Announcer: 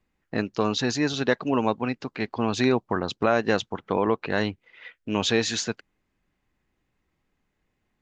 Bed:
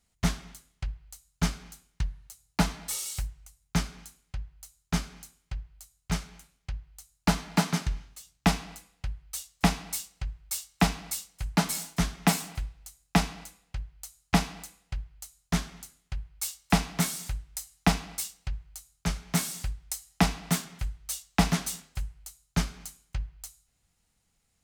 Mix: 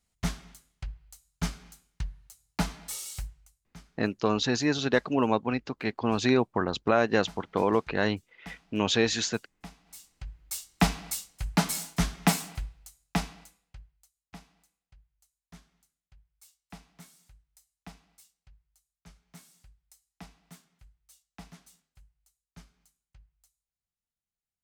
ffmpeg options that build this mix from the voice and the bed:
ffmpeg -i stem1.wav -i stem2.wav -filter_complex "[0:a]adelay=3650,volume=-1.5dB[link_01];[1:a]volume=18.5dB,afade=type=out:start_time=3.24:duration=0.52:silence=0.11885,afade=type=in:start_time=9.84:duration=0.99:silence=0.0749894,afade=type=out:start_time=12.24:duration=1.86:silence=0.0595662[link_02];[link_01][link_02]amix=inputs=2:normalize=0" out.wav

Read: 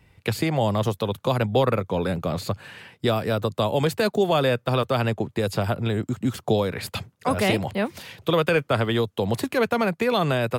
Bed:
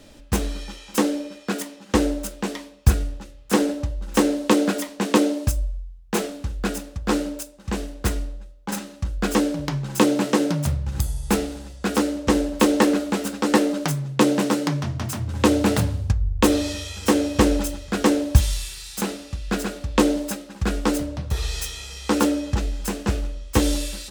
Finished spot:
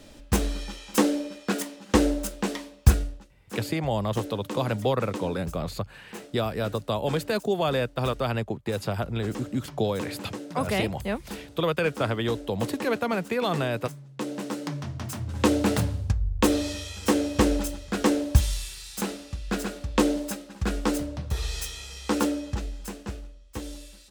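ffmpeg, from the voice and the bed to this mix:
ffmpeg -i stem1.wav -i stem2.wav -filter_complex "[0:a]adelay=3300,volume=-4.5dB[link_01];[1:a]volume=12.5dB,afade=type=out:start_time=2.89:duration=0.4:silence=0.149624,afade=type=in:start_time=14.11:duration=1.34:silence=0.211349,afade=type=out:start_time=21.99:duration=1.39:silence=0.223872[link_02];[link_01][link_02]amix=inputs=2:normalize=0" out.wav

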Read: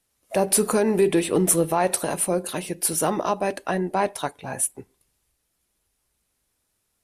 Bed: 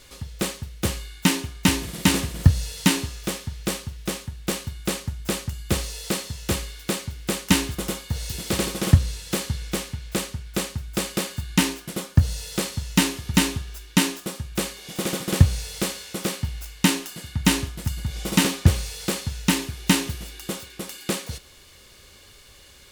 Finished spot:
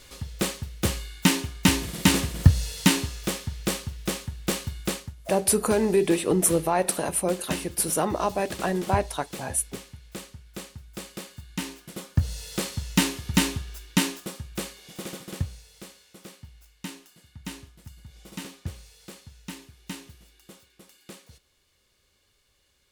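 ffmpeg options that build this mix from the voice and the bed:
ffmpeg -i stem1.wav -i stem2.wav -filter_complex "[0:a]adelay=4950,volume=-2dB[link_01];[1:a]volume=9.5dB,afade=type=out:start_time=4.79:duration=0.36:silence=0.251189,afade=type=in:start_time=11.59:duration=1.16:silence=0.316228,afade=type=out:start_time=13.78:duration=1.85:silence=0.158489[link_02];[link_01][link_02]amix=inputs=2:normalize=0" out.wav

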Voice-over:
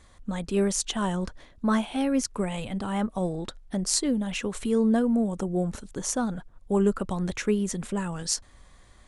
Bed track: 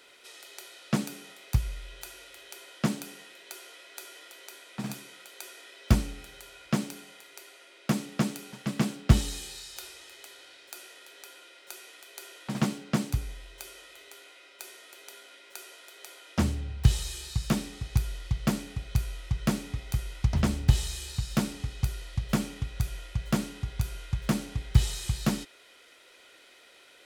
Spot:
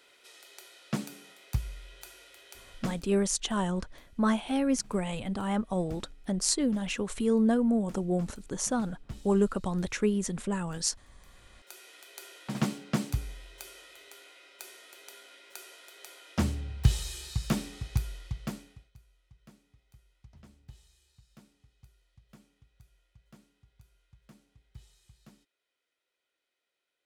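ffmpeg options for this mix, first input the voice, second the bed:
ffmpeg -i stem1.wav -i stem2.wav -filter_complex "[0:a]adelay=2550,volume=-2dB[link_01];[1:a]volume=15.5dB,afade=type=out:start_time=2.77:duration=0.29:silence=0.133352,afade=type=in:start_time=11.18:duration=0.83:silence=0.0944061,afade=type=out:start_time=17.81:duration=1.1:silence=0.0421697[link_02];[link_01][link_02]amix=inputs=2:normalize=0" out.wav

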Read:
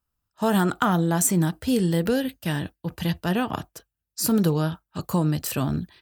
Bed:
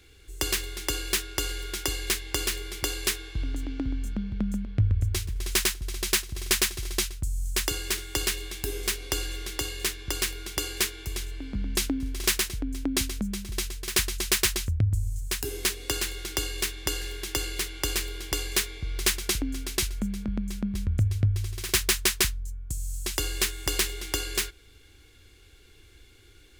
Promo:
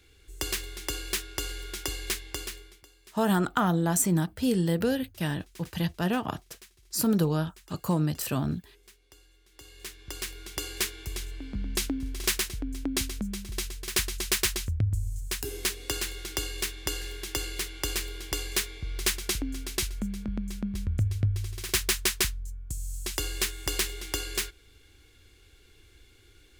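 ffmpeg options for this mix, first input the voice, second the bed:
ffmpeg -i stem1.wav -i stem2.wav -filter_complex "[0:a]adelay=2750,volume=-3.5dB[link_01];[1:a]volume=21dB,afade=type=out:start_time=2.13:duration=0.72:silence=0.0668344,afade=type=in:start_time=9.49:duration=1.41:silence=0.0562341[link_02];[link_01][link_02]amix=inputs=2:normalize=0" out.wav

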